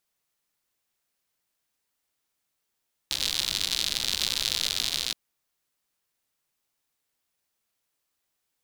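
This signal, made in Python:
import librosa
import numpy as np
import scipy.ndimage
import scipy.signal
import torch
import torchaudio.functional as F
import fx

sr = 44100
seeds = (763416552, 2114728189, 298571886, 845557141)

y = fx.rain(sr, seeds[0], length_s=2.02, drops_per_s=110.0, hz=3900.0, bed_db=-14)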